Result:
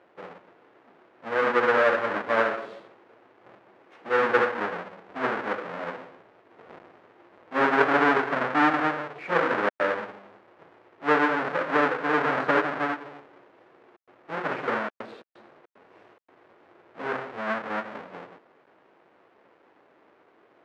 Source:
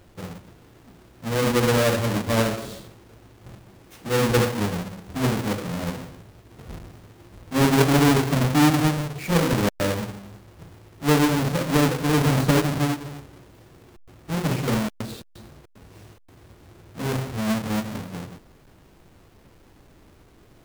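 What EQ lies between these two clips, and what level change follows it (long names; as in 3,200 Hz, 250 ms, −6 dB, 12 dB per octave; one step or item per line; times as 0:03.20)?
dynamic equaliser 1,500 Hz, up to +7 dB, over −40 dBFS, Q 1.7
flat-topped band-pass 940 Hz, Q 0.53
0.0 dB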